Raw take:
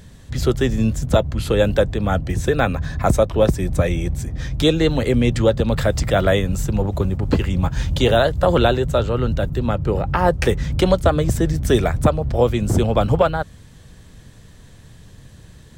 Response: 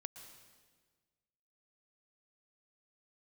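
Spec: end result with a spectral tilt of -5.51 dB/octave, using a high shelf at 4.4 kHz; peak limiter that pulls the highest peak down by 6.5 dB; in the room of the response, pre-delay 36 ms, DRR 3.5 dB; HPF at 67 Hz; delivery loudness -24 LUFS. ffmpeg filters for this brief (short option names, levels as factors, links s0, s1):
-filter_complex "[0:a]highpass=67,highshelf=f=4400:g=7,alimiter=limit=0.355:level=0:latency=1,asplit=2[s0][s1];[1:a]atrim=start_sample=2205,adelay=36[s2];[s1][s2]afir=irnorm=-1:irlink=0,volume=1.06[s3];[s0][s3]amix=inputs=2:normalize=0,volume=0.596"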